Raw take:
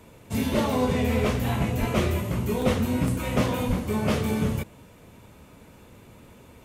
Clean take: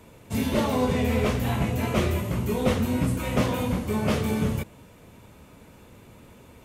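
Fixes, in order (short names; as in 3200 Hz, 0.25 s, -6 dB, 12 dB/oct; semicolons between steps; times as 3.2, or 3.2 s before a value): de-plosive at 1.79/3.67; interpolate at 1.73/2.62/3.08/3.79, 1.2 ms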